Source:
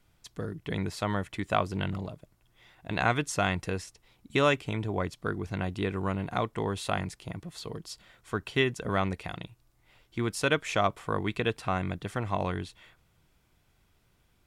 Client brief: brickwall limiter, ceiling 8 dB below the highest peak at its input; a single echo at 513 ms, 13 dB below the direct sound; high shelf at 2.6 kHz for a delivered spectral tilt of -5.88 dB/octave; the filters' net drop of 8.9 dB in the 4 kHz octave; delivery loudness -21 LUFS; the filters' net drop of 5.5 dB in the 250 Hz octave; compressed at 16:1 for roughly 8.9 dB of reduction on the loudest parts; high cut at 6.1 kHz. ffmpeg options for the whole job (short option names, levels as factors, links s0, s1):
-af "lowpass=6100,equalizer=f=250:t=o:g=-8,highshelf=f=2600:g=-8.5,equalizer=f=4000:t=o:g=-4,acompressor=threshold=0.0316:ratio=16,alimiter=level_in=1.33:limit=0.0631:level=0:latency=1,volume=0.75,aecho=1:1:513:0.224,volume=8.91"